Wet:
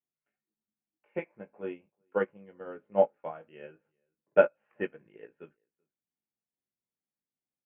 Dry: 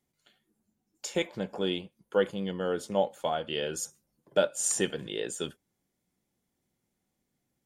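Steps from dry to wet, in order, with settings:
Butterworth low-pass 2,600 Hz 72 dB per octave
low-shelf EQ 86 Hz −10.5 dB
double-tracking delay 19 ms −5 dB
slap from a distant wall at 66 metres, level −27 dB
expander for the loud parts 2.5 to 1, over −36 dBFS
level +5.5 dB

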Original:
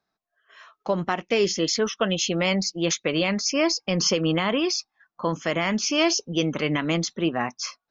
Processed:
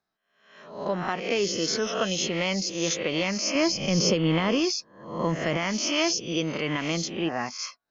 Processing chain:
peak hold with a rise ahead of every peak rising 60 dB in 0.63 s
0:03.55–0:05.57: low-shelf EQ 270 Hz +9 dB
level −5 dB

